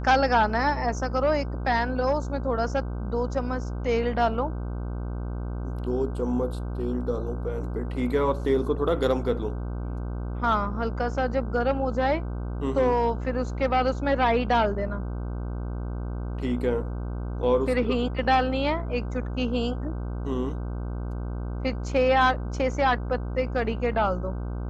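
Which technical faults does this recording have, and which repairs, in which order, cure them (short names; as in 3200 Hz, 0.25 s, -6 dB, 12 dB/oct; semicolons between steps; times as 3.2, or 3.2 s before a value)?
buzz 60 Hz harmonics 26 -31 dBFS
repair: de-hum 60 Hz, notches 26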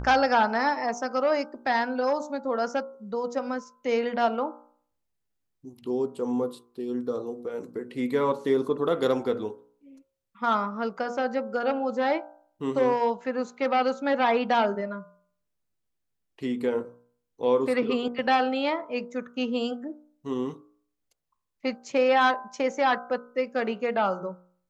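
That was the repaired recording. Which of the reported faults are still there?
none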